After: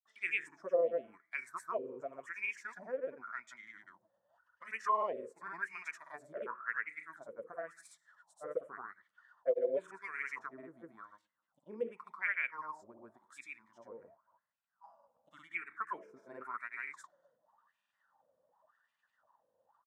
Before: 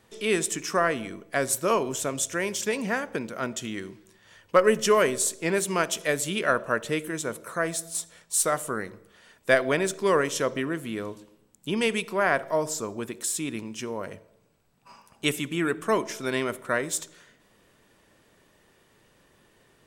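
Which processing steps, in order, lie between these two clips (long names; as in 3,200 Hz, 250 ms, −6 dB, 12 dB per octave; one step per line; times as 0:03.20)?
LFO wah 0.91 Hz 490–2,400 Hz, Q 12
granular cloud 100 ms, grains 20 per second, pitch spread up and down by 0 semitones
phaser swept by the level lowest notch 390 Hz, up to 1,600 Hz, full sweep at −31 dBFS
level +7 dB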